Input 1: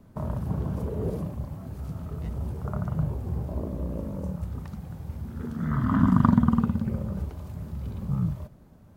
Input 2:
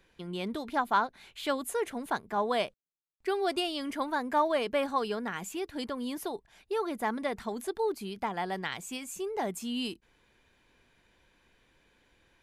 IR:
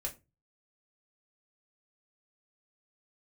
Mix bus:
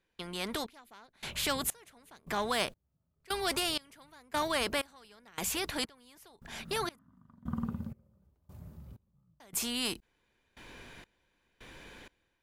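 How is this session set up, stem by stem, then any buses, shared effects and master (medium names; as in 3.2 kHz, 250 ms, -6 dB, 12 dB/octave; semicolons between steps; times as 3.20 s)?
-17.5 dB, 1.05 s, send -17 dB, treble shelf 12 kHz +9 dB; auto duck -10 dB, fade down 0.80 s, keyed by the second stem
-4.0 dB, 0.00 s, muted 6.99–9.40 s, no send, spectrum-flattening compressor 2:1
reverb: on, RT60 0.25 s, pre-delay 3 ms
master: level rider gain up to 5 dB; saturation -19 dBFS, distortion -22 dB; trance gate "..xxxxx...." 159 bpm -24 dB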